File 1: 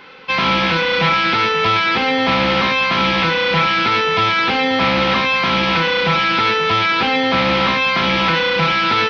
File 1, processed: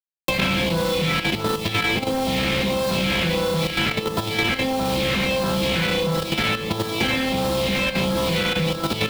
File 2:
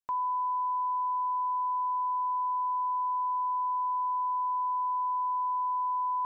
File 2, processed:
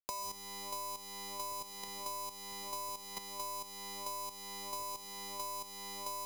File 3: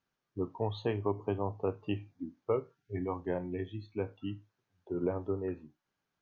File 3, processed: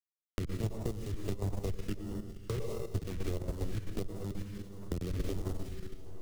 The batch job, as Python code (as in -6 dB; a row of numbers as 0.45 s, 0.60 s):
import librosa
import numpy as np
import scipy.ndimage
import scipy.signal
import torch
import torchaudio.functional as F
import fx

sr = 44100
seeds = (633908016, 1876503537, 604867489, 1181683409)

p1 = fx.delta_hold(x, sr, step_db=-28.5)
p2 = fx.rev_plate(p1, sr, seeds[0], rt60_s=1.2, hf_ratio=0.9, predelay_ms=90, drr_db=3.5)
p3 = fx.phaser_stages(p2, sr, stages=2, low_hz=750.0, high_hz=2200.0, hz=1.5, feedback_pct=20)
p4 = fx.sample_hold(p3, sr, seeds[1], rate_hz=1600.0, jitter_pct=0)
p5 = p3 + F.gain(torch.from_numpy(p4), -9.0).numpy()
p6 = fx.high_shelf(p5, sr, hz=2700.0, db=-3.0)
p7 = p6 + fx.echo_feedback(p6, sr, ms=92, feedback_pct=24, wet_db=-19, dry=0)
p8 = fx.level_steps(p7, sr, step_db=10)
p9 = np.clip(10.0 ** (15.5 / 20.0) * p8, -1.0, 1.0) / 10.0 ** (15.5 / 20.0)
p10 = fx.peak_eq(p9, sr, hz=260.0, db=-4.5, octaves=0.26)
p11 = fx.band_squash(p10, sr, depth_pct=100)
y = F.gain(torch.from_numpy(p11), -1.0).numpy()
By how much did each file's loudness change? -6.5 LU, -11.5 LU, -2.5 LU